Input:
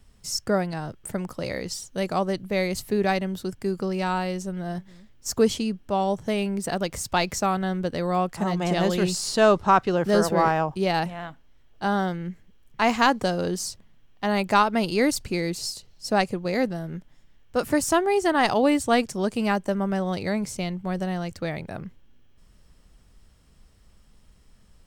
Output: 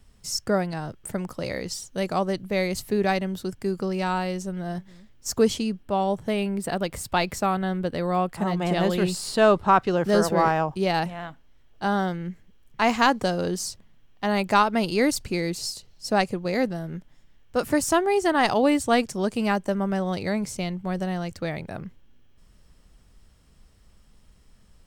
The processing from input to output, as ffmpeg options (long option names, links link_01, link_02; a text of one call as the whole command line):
ffmpeg -i in.wav -filter_complex "[0:a]asettb=1/sr,asplit=3[link_01][link_02][link_03];[link_01]atrim=end=5.834[link_04];[link_02]atrim=start=5.83:end=9.82,asetpts=PTS-STARTPTS,afade=type=in:duration=0.004:curve=qsin,afade=type=out:start_time=3.986:duration=0.004:curve=qsin,equalizer=frequency=6100:width=2.2:gain=-8[link_05];[link_03]atrim=start=9.816[link_06];[link_04][link_05]acrossfade=duration=0.004:curve1=hsin:curve2=qsin[link_07];[link_07][link_06]acrossfade=duration=0.004:curve1=qsin:curve2=hsin" out.wav